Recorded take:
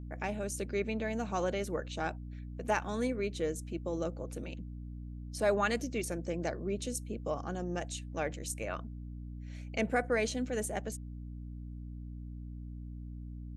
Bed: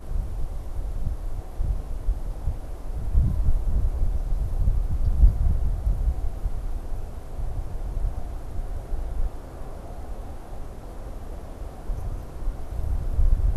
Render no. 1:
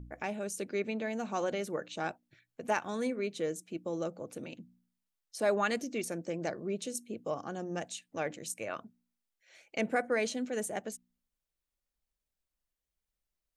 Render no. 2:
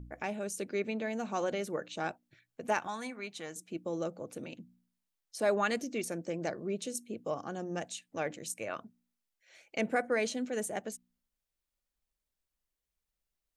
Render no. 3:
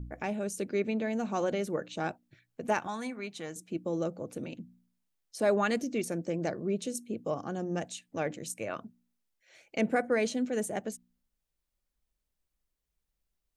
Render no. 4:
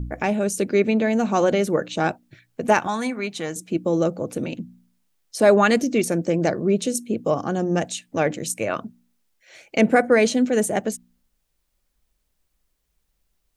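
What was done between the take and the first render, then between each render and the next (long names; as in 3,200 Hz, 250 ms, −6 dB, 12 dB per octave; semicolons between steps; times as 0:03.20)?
hum removal 60 Hz, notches 5
0:02.87–0:03.56: low shelf with overshoot 640 Hz −7 dB, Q 3
low-shelf EQ 400 Hz +7 dB
level +11.5 dB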